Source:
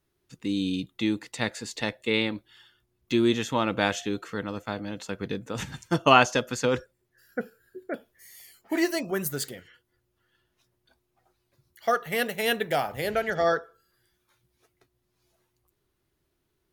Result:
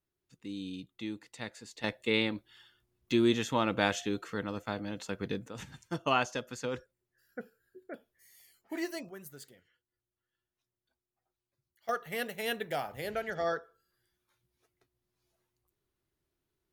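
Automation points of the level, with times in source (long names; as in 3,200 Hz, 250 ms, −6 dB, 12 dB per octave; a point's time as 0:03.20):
−12.5 dB
from 0:01.84 −3.5 dB
from 0:05.48 −11 dB
from 0:09.09 −18.5 dB
from 0:11.89 −8.5 dB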